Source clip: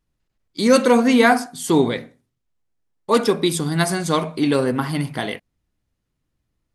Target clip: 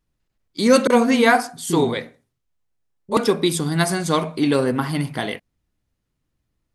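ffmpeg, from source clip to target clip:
ffmpeg -i in.wav -filter_complex "[0:a]asettb=1/sr,asplit=3[link_01][link_02][link_03];[link_01]atrim=end=0.874[link_04];[link_02]atrim=start=0.87:end=3.17,asetpts=PTS-STARTPTS,afade=type=in:duration=0.004:curve=qsin,afade=type=out:start_time=2.296:duration=0.004:curve=qsin,acrossover=split=280[link_05][link_06];[link_06]adelay=30[link_07];[link_05][link_07]amix=inputs=2:normalize=0,atrim=end_sample=101430[link_08];[link_03]atrim=start=3.166[link_09];[link_04][link_08]acrossfade=duration=0.004:curve1=hsin:curve2=qsin[link_10];[link_10][link_09]acrossfade=duration=0.004:curve1=qsin:curve2=hsin" out.wav

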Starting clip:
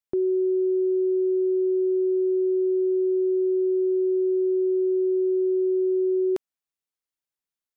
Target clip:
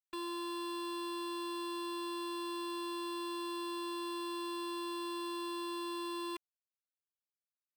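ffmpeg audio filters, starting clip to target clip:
ffmpeg -i in.wav -af "acrusher=bits=8:mix=0:aa=0.000001,aeval=exprs='0.0211*(abs(mod(val(0)/0.0211+3,4)-2)-1)':channel_layout=same,afftfilt=real='hypot(re,im)*cos(PI*b)':imag='0':win_size=512:overlap=0.75,volume=2.5dB" out.wav

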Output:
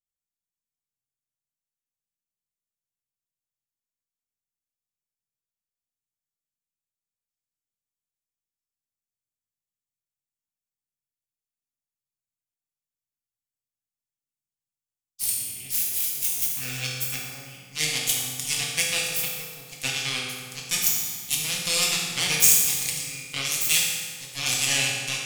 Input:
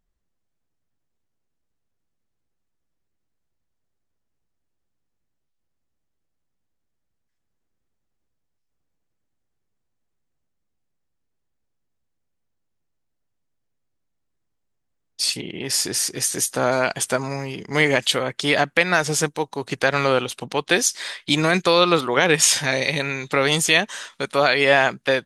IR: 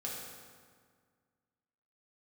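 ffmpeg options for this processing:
-filter_complex "[0:a]aeval=exprs='0.891*(cos(1*acos(clip(val(0)/0.891,-1,1)))-cos(1*PI/2))+0.141*(cos(3*acos(clip(val(0)/0.891,-1,1)))-cos(3*PI/2))+0.0891*(cos(6*acos(clip(val(0)/0.891,-1,1)))-cos(6*PI/2))+0.0891*(cos(7*acos(clip(val(0)/0.891,-1,1)))-cos(7*PI/2))':channel_layout=same,equalizer=frequency=125:width_type=o:width=1:gain=6,equalizer=frequency=500:width_type=o:width=1:gain=-5,equalizer=frequency=4000:width_type=o:width=1:gain=-9,aexciter=amount=5.8:drive=9.3:freq=2300[link_01];[1:a]atrim=start_sample=2205[link_02];[link_01][link_02]afir=irnorm=-1:irlink=0,volume=-10.5dB"

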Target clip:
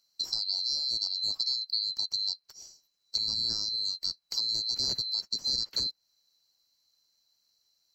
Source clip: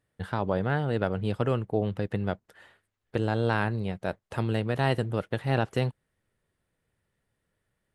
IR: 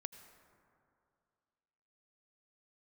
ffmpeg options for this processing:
-filter_complex "[0:a]afftfilt=real='real(if(lt(b,736),b+184*(1-2*mod(floor(b/184),2)),b),0)':imag='imag(if(lt(b,736),b+184*(1-2*mod(floor(b/184),2)),b),0)':win_size=2048:overlap=0.75,acrossover=split=240|2500[link_01][link_02][link_03];[link_01]aeval=exprs='(mod(158*val(0)+1,2)-1)/158':channel_layout=same[link_04];[link_03]acompressor=threshold=-36dB:ratio=6[link_05];[link_04][link_02][link_05]amix=inputs=3:normalize=0,volume=5.5dB"

